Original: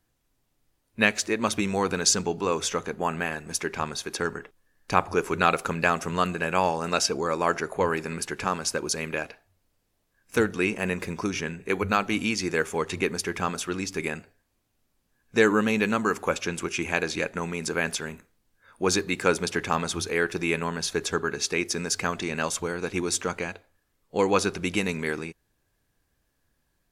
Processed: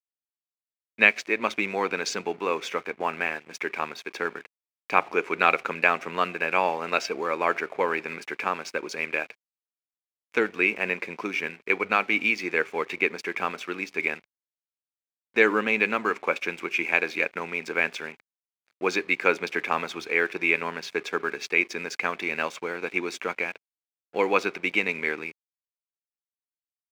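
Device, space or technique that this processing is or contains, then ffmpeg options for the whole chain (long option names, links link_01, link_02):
pocket radio on a weak battery: -af "highpass=300,lowpass=3400,aeval=exprs='sgn(val(0))*max(abs(val(0))-0.00376,0)':channel_layout=same,highpass=100,equalizer=frequency=2300:width_type=o:width=0.4:gain=10.5"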